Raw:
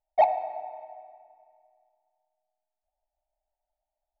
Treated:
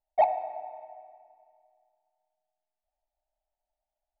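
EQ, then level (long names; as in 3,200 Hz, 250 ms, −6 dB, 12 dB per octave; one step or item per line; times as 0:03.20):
high-frequency loss of the air 160 metres
−1.5 dB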